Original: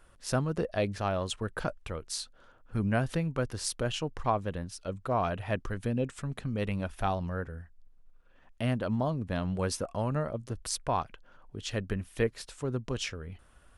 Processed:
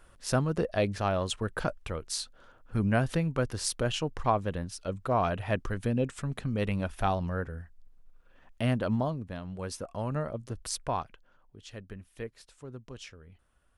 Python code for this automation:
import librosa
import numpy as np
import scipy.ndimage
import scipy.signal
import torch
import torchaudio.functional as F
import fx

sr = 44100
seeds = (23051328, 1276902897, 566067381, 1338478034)

y = fx.gain(x, sr, db=fx.line((8.95, 2.0), (9.42, -8.5), (10.17, -1.0), (10.88, -1.0), (11.59, -11.0)))